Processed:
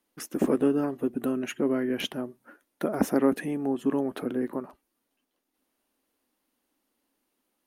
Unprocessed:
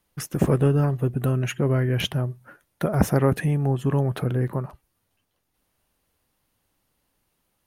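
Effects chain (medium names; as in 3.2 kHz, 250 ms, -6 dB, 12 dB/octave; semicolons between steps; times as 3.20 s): resonant low shelf 180 Hz -12.5 dB, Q 3; trim -5 dB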